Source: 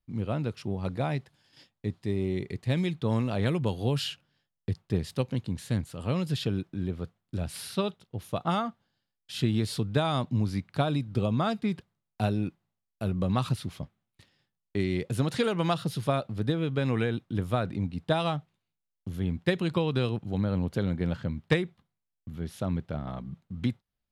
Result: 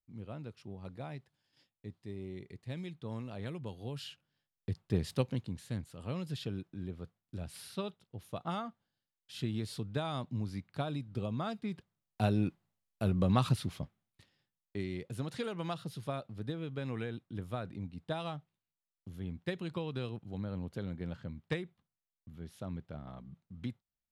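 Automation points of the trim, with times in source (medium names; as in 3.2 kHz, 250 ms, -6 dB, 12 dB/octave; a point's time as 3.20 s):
3.93 s -14 dB
5.13 s -1.5 dB
5.62 s -9.5 dB
11.67 s -9.5 dB
12.39 s -1 dB
13.61 s -1 dB
15.01 s -11 dB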